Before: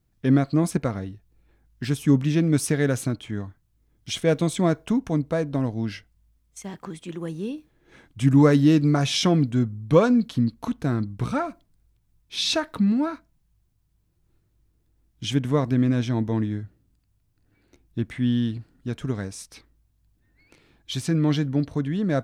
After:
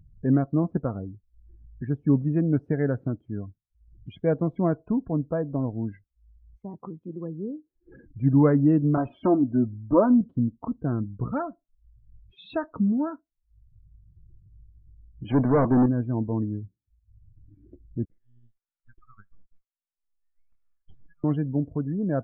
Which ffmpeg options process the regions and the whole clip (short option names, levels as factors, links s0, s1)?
-filter_complex "[0:a]asettb=1/sr,asplit=3[s0][s1][s2];[s0]atrim=end=8.974[s3];[s1]atrim=start=8.97:end=10.21,asetpts=PTS-STARTPTS,afade=t=in:d=0.004:c=qsin,afade=t=out:st=1.236:d=0.004:c=qsin,lowpass=4200,highshelf=f=1600:t=q:w=1.5:g=-6.5,aecho=1:1:3.2:0.84,atrim=end_sample=54684[s4];[s2]atrim=start=10.206[s5];[s3][s4]acrossfade=d=0.004:c1=hsin:c2=qsin[s6];[s6][s5]acrossfade=d=0.004:c1=qsin:c2=hsin,asettb=1/sr,asplit=3[s7][s8][s9];[s7]atrim=end=15.244[s10];[s8]atrim=start=15.24:end=15.86,asetpts=PTS-STARTPTS,afade=t=in:d=0.004:c=qsin,afade=t=out:st=0.616:d=0.004:c=qsin,agate=range=0.0224:threshold=0.0501:ratio=3:release=100:detection=peak,lowpass=2300,asplit=2[s11][s12];[s12]highpass=f=720:p=1,volume=35.5,asoftclip=type=tanh:threshold=0.355[s13];[s11][s13]amix=inputs=2:normalize=0,lowpass=f=1100:p=1,volume=0.501[s14];[s9]atrim=start=15.856[s15];[s10][s14]acrossfade=d=0.004:c1=hsin:c2=qsin[s16];[s16][s15]acrossfade=d=0.004:c1=qsin:c2=hsin,asettb=1/sr,asplit=3[s17][s18][s19];[s17]atrim=end=18.054[s20];[s18]atrim=start=18.05:end=21.24,asetpts=PTS-STARTPTS,afade=t=in:d=0.004:c=qsin,afade=t=out:st=3.186:d=0.004:c=qsin,highpass=f=1200:t=q:w=4.7,aderivative,aeval=exprs='max(val(0),0)':c=same[s21];[s19]atrim=start=21.236[s22];[s20][s21]acrossfade=d=0.004:c1=hsin:c2=qsin[s23];[s23][s22]acrossfade=d=0.004:c1=qsin:c2=hsin,acompressor=mode=upward:threshold=0.0282:ratio=2.5,lowpass=1400,afftdn=nr=34:nf=-37,volume=0.75"